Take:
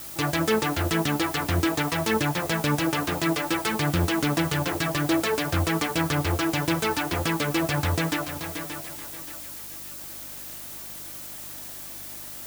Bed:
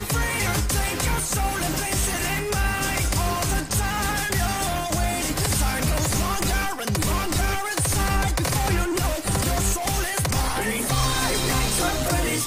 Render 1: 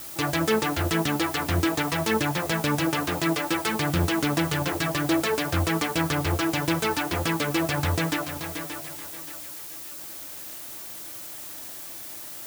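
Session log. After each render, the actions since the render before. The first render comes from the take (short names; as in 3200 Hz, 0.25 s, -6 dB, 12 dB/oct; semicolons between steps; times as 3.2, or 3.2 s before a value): de-hum 50 Hz, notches 5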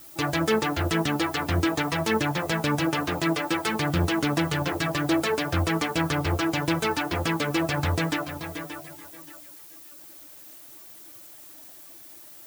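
denoiser 10 dB, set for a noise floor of -39 dBFS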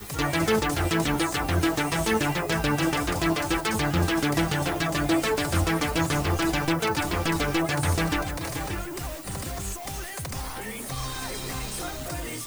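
add bed -10.5 dB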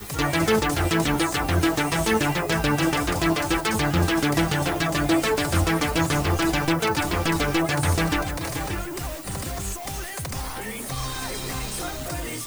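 gain +2.5 dB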